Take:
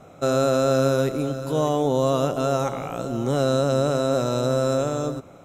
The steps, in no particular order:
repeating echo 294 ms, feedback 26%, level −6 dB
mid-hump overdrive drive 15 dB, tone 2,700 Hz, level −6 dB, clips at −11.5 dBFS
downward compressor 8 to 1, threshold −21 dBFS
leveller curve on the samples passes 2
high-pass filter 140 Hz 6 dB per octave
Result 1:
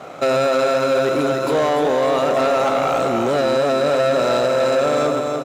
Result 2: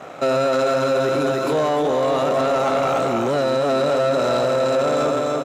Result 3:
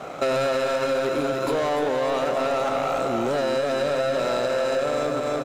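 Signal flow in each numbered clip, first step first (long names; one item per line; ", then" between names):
downward compressor, then mid-hump overdrive, then repeating echo, then leveller curve on the samples, then high-pass filter
repeating echo, then downward compressor, then leveller curve on the samples, then mid-hump overdrive, then high-pass filter
mid-hump overdrive, then high-pass filter, then leveller curve on the samples, then repeating echo, then downward compressor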